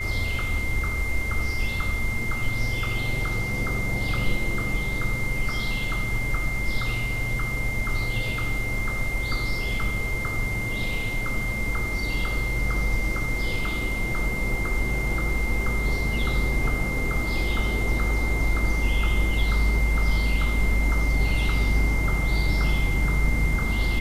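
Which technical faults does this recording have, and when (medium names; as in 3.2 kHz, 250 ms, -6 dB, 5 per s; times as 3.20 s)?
whine 2.1 kHz -29 dBFS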